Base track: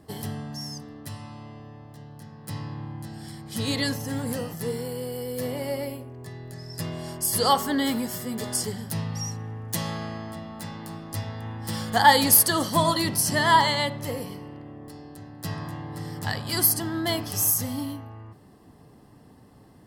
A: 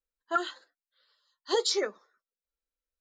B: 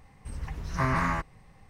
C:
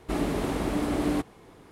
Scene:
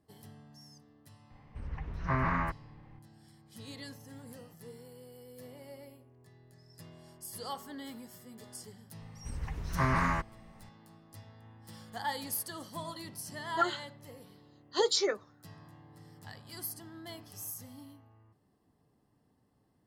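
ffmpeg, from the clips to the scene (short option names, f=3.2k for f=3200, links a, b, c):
-filter_complex "[2:a]asplit=2[a][b];[0:a]volume=-19.5dB[c];[a]lowpass=2.7k,atrim=end=1.69,asetpts=PTS-STARTPTS,volume=-3.5dB,afade=t=in:d=0.004:c=hsin,afade=t=out:st=1.686:d=0.004:c=hsin,adelay=1300[d];[b]atrim=end=1.69,asetpts=PTS-STARTPTS,volume=-2dB,afade=t=in:d=0.004:c=hsin,afade=t=out:st=1.686:d=0.004:c=hsin,adelay=9000[e];[1:a]atrim=end=3,asetpts=PTS-STARTPTS,volume=-1dB,afade=t=in:d=0.004:c=hsin,afade=t=out:st=2.996:d=0.004:c=hsin,adelay=13260[f];[c][d][e][f]amix=inputs=4:normalize=0"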